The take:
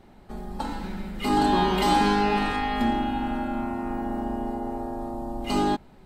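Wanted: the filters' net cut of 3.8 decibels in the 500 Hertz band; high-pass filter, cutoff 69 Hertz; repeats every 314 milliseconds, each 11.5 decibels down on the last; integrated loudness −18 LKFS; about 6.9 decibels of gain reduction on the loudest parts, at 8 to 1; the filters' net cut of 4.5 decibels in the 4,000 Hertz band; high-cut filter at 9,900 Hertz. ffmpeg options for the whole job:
ffmpeg -i in.wav -af "highpass=69,lowpass=9900,equalizer=frequency=500:width_type=o:gain=-5.5,equalizer=frequency=4000:width_type=o:gain=-6,acompressor=threshold=-26dB:ratio=8,aecho=1:1:314|628|942:0.266|0.0718|0.0194,volume=14dB" out.wav

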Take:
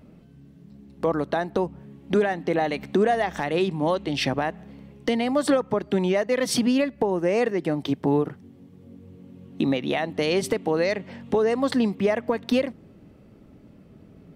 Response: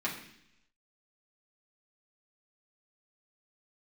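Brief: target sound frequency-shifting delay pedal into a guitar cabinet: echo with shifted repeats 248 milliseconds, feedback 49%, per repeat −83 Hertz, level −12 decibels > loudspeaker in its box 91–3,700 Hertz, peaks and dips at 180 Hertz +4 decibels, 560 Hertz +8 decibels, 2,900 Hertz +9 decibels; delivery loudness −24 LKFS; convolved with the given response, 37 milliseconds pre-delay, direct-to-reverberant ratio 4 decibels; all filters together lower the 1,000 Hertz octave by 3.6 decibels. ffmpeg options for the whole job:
-filter_complex "[0:a]equalizer=frequency=1000:width_type=o:gain=-7.5,asplit=2[link_01][link_02];[1:a]atrim=start_sample=2205,adelay=37[link_03];[link_02][link_03]afir=irnorm=-1:irlink=0,volume=-10dB[link_04];[link_01][link_04]amix=inputs=2:normalize=0,asplit=6[link_05][link_06][link_07][link_08][link_09][link_10];[link_06]adelay=248,afreqshift=-83,volume=-12dB[link_11];[link_07]adelay=496,afreqshift=-166,volume=-18.2dB[link_12];[link_08]adelay=744,afreqshift=-249,volume=-24.4dB[link_13];[link_09]adelay=992,afreqshift=-332,volume=-30.6dB[link_14];[link_10]adelay=1240,afreqshift=-415,volume=-36.8dB[link_15];[link_05][link_11][link_12][link_13][link_14][link_15]amix=inputs=6:normalize=0,highpass=91,equalizer=frequency=180:width_type=q:width=4:gain=4,equalizer=frequency=560:width_type=q:width=4:gain=8,equalizer=frequency=2900:width_type=q:width=4:gain=9,lowpass=frequency=3700:width=0.5412,lowpass=frequency=3700:width=1.3066,volume=-2.5dB"

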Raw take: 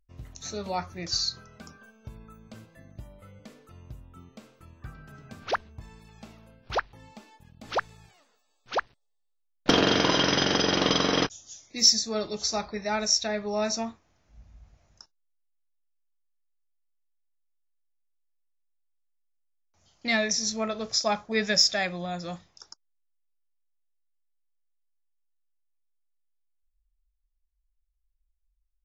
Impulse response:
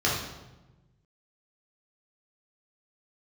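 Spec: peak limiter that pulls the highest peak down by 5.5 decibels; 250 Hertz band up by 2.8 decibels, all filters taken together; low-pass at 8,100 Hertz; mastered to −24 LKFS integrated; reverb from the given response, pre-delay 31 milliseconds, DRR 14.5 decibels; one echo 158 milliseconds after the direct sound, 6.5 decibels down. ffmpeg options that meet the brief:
-filter_complex "[0:a]lowpass=8100,equalizer=frequency=250:width_type=o:gain=3.5,alimiter=limit=-12.5dB:level=0:latency=1,aecho=1:1:158:0.473,asplit=2[link_01][link_02];[1:a]atrim=start_sample=2205,adelay=31[link_03];[link_02][link_03]afir=irnorm=-1:irlink=0,volume=-28dB[link_04];[link_01][link_04]amix=inputs=2:normalize=0,volume=2dB"

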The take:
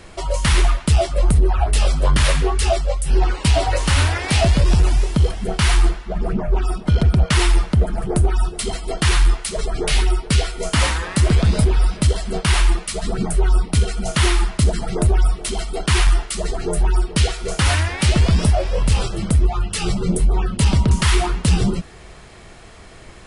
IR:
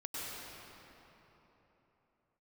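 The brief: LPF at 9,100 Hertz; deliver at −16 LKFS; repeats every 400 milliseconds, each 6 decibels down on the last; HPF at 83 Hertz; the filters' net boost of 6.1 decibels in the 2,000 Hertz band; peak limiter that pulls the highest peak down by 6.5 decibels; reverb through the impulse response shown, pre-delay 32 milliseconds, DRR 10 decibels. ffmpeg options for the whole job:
-filter_complex "[0:a]highpass=83,lowpass=9100,equalizer=frequency=2000:width_type=o:gain=7.5,alimiter=limit=-10dB:level=0:latency=1,aecho=1:1:400|800|1200|1600|2000|2400:0.501|0.251|0.125|0.0626|0.0313|0.0157,asplit=2[link_01][link_02];[1:a]atrim=start_sample=2205,adelay=32[link_03];[link_02][link_03]afir=irnorm=-1:irlink=0,volume=-12dB[link_04];[link_01][link_04]amix=inputs=2:normalize=0,volume=4.5dB"

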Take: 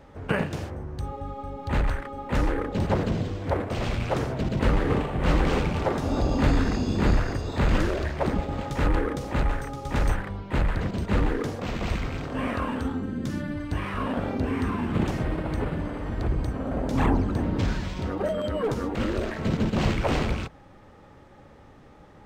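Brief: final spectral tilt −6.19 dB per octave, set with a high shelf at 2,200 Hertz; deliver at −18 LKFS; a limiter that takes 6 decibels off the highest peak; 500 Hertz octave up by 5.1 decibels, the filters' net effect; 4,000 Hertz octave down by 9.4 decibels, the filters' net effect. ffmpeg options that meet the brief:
ffmpeg -i in.wav -af "equalizer=frequency=500:width_type=o:gain=6.5,highshelf=frequency=2200:gain=-4.5,equalizer=frequency=4000:width_type=o:gain=-9,volume=9dB,alimiter=limit=-5.5dB:level=0:latency=1" out.wav

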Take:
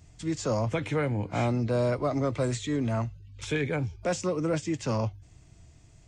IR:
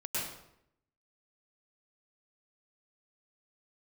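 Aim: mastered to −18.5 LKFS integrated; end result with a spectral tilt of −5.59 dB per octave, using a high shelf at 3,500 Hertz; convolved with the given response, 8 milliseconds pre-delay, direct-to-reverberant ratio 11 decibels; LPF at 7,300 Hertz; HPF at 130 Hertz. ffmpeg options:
-filter_complex "[0:a]highpass=130,lowpass=7300,highshelf=frequency=3500:gain=-6.5,asplit=2[link_01][link_02];[1:a]atrim=start_sample=2205,adelay=8[link_03];[link_02][link_03]afir=irnorm=-1:irlink=0,volume=-15.5dB[link_04];[link_01][link_04]amix=inputs=2:normalize=0,volume=11.5dB"

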